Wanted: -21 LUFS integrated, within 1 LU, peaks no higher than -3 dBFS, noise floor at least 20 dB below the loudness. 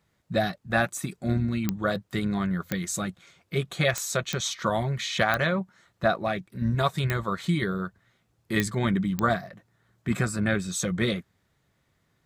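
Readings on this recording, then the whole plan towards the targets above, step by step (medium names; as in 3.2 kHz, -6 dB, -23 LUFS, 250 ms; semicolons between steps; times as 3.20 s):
clicks found 8; loudness -27.5 LUFS; peak level -6.5 dBFS; loudness target -21.0 LUFS
-> de-click; trim +6.5 dB; peak limiter -3 dBFS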